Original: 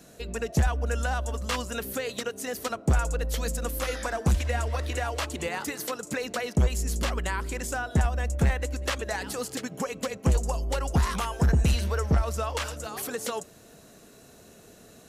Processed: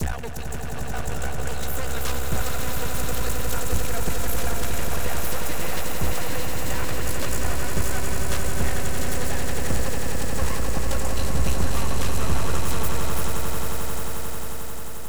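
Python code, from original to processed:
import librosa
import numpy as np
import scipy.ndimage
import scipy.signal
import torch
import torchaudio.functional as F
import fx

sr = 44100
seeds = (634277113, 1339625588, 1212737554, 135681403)

y = fx.block_reorder(x, sr, ms=186.0, group=4)
y = np.maximum(y, 0.0)
y = fx.high_shelf(y, sr, hz=9300.0, db=11.0)
y = fx.echo_swell(y, sr, ms=89, loudest=8, wet_db=-7.5)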